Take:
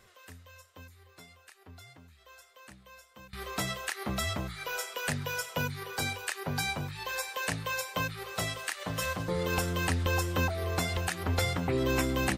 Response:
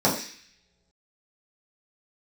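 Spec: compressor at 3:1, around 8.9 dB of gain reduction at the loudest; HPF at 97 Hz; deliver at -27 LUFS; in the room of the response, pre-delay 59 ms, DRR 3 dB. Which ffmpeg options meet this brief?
-filter_complex "[0:a]highpass=97,acompressor=threshold=-38dB:ratio=3,asplit=2[a][b];[1:a]atrim=start_sample=2205,adelay=59[c];[b][c]afir=irnorm=-1:irlink=0,volume=-19.5dB[d];[a][d]amix=inputs=2:normalize=0,volume=10dB"

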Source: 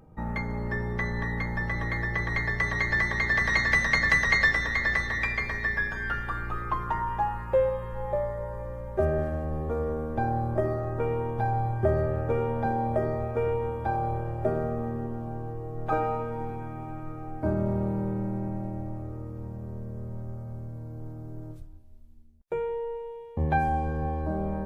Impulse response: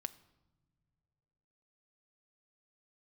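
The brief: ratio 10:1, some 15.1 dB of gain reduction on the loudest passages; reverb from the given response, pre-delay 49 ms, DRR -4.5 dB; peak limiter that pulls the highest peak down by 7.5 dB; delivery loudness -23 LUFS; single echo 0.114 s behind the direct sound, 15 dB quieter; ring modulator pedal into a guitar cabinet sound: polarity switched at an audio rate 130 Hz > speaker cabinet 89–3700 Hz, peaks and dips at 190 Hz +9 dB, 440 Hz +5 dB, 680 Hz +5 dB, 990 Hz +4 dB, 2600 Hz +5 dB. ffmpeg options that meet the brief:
-filter_complex "[0:a]acompressor=threshold=-34dB:ratio=10,alimiter=level_in=6dB:limit=-24dB:level=0:latency=1,volume=-6dB,aecho=1:1:114:0.178,asplit=2[a][b];[1:a]atrim=start_sample=2205,adelay=49[c];[b][c]afir=irnorm=-1:irlink=0,volume=7dB[d];[a][d]amix=inputs=2:normalize=0,aeval=exprs='val(0)*sgn(sin(2*PI*130*n/s))':c=same,highpass=89,equalizer=f=190:t=q:w=4:g=9,equalizer=f=440:t=q:w=4:g=5,equalizer=f=680:t=q:w=4:g=5,equalizer=f=990:t=q:w=4:g=4,equalizer=f=2.6k:t=q:w=4:g=5,lowpass=f=3.7k:w=0.5412,lowpass=f=3.7k:w=1.3066,volume=8dB"

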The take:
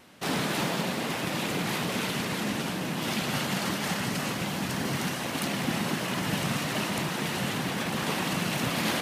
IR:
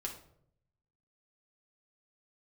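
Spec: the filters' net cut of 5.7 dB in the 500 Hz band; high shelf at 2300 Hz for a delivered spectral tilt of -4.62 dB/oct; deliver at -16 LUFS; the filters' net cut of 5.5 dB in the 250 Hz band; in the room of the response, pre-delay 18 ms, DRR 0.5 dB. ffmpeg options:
-filter_complex "[0:a]equalizer=f=250:t=o:g=-6.5,equalizer=f=500:t=o:g=-5,highshelf=f=2.3k:g=-9,asplit=2[a][b];[1:a]atrim=start_sample=2205,adelay=18[c];[b][c]afir=irnorm=-1:irlink=0,volume=-0.5dB[d];[a][d]amix=inputs=2:normalize=0,volume=15.5dB"

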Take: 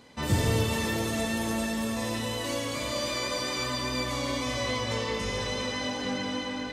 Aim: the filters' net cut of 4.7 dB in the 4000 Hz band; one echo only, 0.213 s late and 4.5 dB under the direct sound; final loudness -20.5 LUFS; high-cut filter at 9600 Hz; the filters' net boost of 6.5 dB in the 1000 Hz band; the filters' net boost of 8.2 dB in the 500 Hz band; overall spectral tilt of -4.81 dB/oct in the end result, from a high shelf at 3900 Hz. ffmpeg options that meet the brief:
-af "lowpass=9.6k,equalizer=f=500:t=o:g=8,equalizer=f=1k:t=o:g=5.5,highshelf=f=3.9k:g=4,equalizer=f=4k:t=o:g=-9,aecho=1:1:213:0.596,volume=4.5dB"

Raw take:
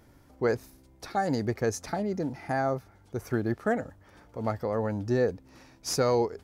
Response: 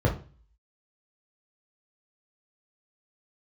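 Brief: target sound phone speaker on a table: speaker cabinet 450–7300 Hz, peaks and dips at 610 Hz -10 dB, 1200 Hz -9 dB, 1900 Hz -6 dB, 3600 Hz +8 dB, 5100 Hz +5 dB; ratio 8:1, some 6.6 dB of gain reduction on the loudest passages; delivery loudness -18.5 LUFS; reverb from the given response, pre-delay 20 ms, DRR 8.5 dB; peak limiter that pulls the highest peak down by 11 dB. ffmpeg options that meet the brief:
-filter_complex "[0:a]acompressor=threshold=-27dB:ratio=8,alimiter=level_in=4.5dB:limit=-24dB:level=0:latency=1,volume=-4.5dB,asplit=2[a][b];[1:a]atrim=start_sample=2205,adelay=20[c];[b][c]afir=irnorm=-1:irlink=0,volume=-21dB[d];[a][d]amix=inputs=2:normalize=0,highpass=f=450:w=0.5412,highpass=f=450:w=1.3066,equalizer=f=610:t=q:w=4:g=-10,equalizer=f=1.2k:t=q:w=4:g=-9,equalizer=f=1.9k:t=q:w=4:g=-6,equalizer=f=3.6k:t=q:w=4:g=8,equalizer=f=5.1k:t=q:w=4:g=5,lowpass=f=7.3k:w=0.5412,lowpass=f=7.3k:w=1.3066,volume=24dB"

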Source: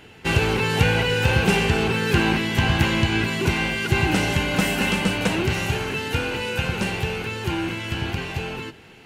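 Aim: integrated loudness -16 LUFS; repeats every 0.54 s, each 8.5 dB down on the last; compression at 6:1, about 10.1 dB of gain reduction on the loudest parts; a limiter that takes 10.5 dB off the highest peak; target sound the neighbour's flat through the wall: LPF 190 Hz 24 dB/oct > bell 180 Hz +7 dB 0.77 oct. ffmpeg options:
-af "acompressor=threshold=-26dB:ratio=6,alimiter=level_in=0.5dB:limit=-24dB:level=0:latency=1,volume=-0.5dB,lowpass=f=190:w=0.5412,lowpass=f=190:w=1.3066,equalizer=f=180:t=o:w=0.77:g=7,aecho=1:1:540|1080|1620|2160:0.376|0.143|0.0543|0.0206,volume=20.5dB"

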